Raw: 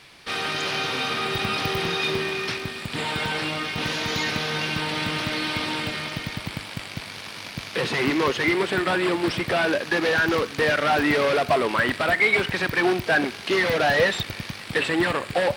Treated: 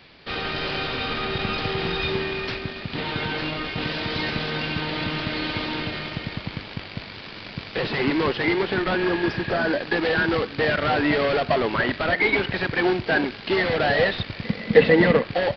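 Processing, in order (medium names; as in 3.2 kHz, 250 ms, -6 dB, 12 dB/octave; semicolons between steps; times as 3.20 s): 9.02–9.77 s: spectral replace 1.6–4.3 kHz; in parallel at -6.5 dB: sample-and-hold 35×; on the sum: resampled via 11.025 kHz; 14.44–15.23 s: small resonant body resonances 210/470/2000 Hz, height 15 dB, ringing for 45 ms; trim -2 dB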